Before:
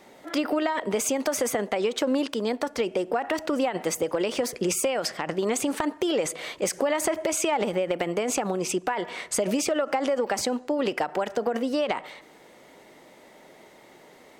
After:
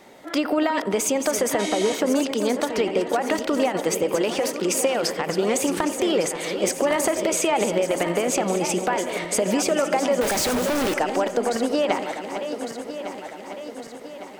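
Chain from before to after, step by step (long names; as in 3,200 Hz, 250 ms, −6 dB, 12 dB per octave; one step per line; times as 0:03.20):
feedback delay that plays each chunk backwards 578 ms, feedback 70%, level −9 dB
0:01.62–0:01.97: healed spectral selection 1,900–12,000 Hz after
0:04.39–0:04.99: high-pass filter 320 Hz → 150 Hz
0:10.21–0:10.94: log-companded quantiser 2 bits
feedback echo with a low-pass in the loop 88 ms, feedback 83%, low-pass 2,000 Hz, level −18 dB
level +3 dB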